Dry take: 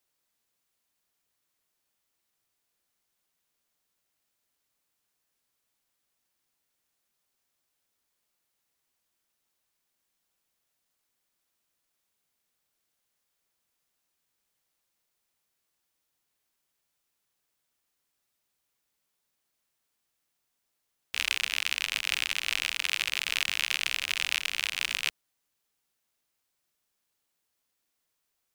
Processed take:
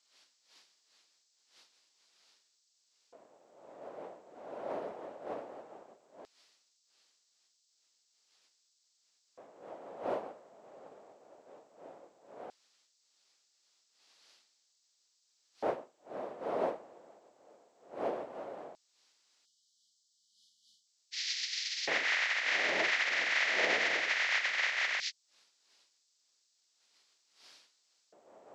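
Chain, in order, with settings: nonlinear frequency compression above 1100 Hz 1.5:1; wind noise 300 Hz -39 dBFS; spectral delete 19.45–20.87, 240–2900 Hz; LFO high-pass square 0.16 Hz 610–4700 Hz

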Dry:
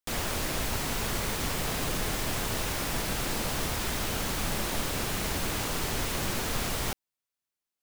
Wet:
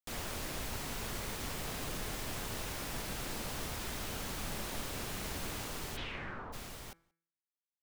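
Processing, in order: ending faded out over 2.34 s; de-hum 166.4 Hz, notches 14; 5.96–6.52 synth low-pass 3700 Hz -> 980 Hz, resonance Q 2.9; outdoor echo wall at 31 m, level -30 dB; gain -9 dB

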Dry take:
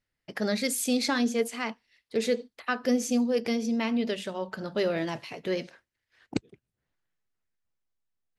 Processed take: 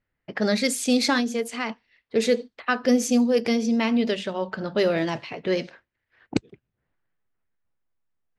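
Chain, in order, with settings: low-pass opened by the level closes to 2100 Hz, open at -22 dBFS; 1.19–1.7 compressor, threshold -28 dBFS, peak gain reduction 7 dB; gain +5.5 dB

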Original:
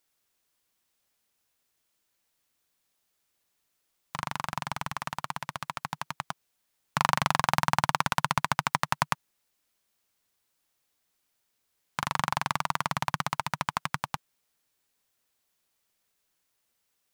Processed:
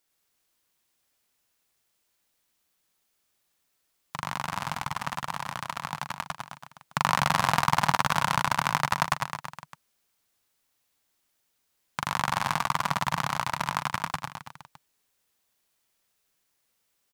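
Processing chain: reverse bouncing-ball echo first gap 0.1 s, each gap 1.1×, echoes 5

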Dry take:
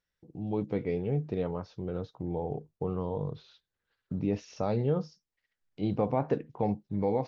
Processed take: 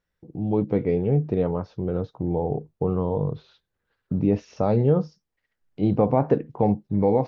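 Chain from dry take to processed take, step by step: high shelf 2000 Hz -11 dB; gain +9 dB

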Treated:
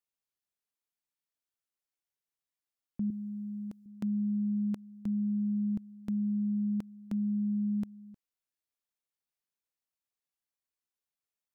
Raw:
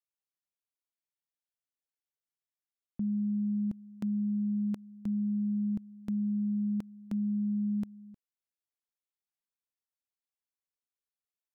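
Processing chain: 3.1–3.86 tone controls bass -12 dB, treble +6 dB

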